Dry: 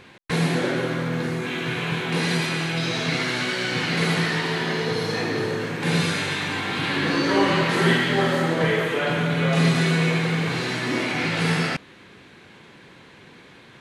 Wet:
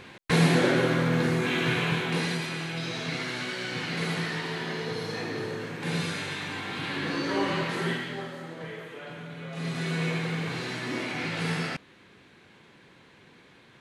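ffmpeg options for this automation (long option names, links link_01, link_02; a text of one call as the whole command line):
ffmpeg -i in.wav -af "volume=11.5dB,afade=type=out:start_time=1.68:duration=0.7:silence=0.354813,afade=type=out:start_time=7.61:duration=0.71:silence=0.316228,afade=type=in:start_time=9.53:duration=0.52:silence=0.298538" out.wav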